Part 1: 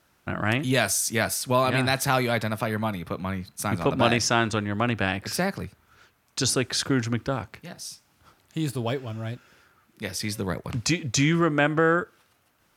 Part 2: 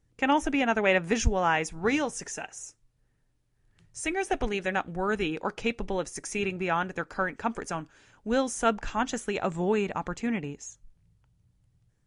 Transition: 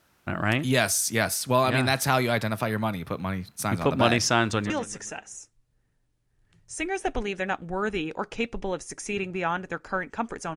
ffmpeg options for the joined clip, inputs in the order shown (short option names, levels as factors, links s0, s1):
-filter_complex "[0:a]apad=whole_dur=10.56,atrim=end=10.56,atrim=end=4.702[s0];[1:a]atrim=start=1.958:end=7.82[s1];[s0][s1]acrossfade=d=0.004:c1=hsin:c2=hsin,asplit=2[s2][s3];[s3]afade=t=in:st=4.44:d=0.01,afade=t=out:st=4.7:d=0.01,aecho=0:1:130|260|390|520|650:0.266073|0.119733|0.0538797|0.0242459|0.0109106[s4];[s2][s4]amix=inputs=2:normalize=0"